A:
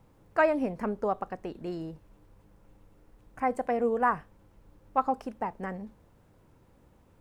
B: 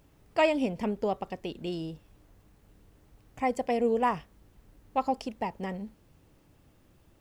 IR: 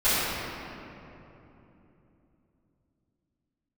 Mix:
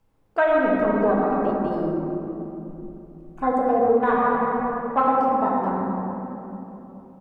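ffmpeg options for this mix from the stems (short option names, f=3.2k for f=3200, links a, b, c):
-filter_complex "[0:a]bandreject=f=60:t=h:w=6,bandreject=f=120:t=h:w=6,bandreject=f=180:t=h:w=6,afwtdn=0.0224,volume=3dB,asplit=2[a][b];[b]volume=-10.5dB[c];[1:a]highpass=630,acompressor=threshold=-35dB:ratio=6,adelay=0.3,volume=-12.5dB[d];[2:a]atrim=start_sample=2205[e];[c][e]afir=irnorm=-1:irlink=0[f];[a][d][f]amix=inputs=3:normalize=0,alimiter=limit=-9.5dB:level=0:latency=1:release=372"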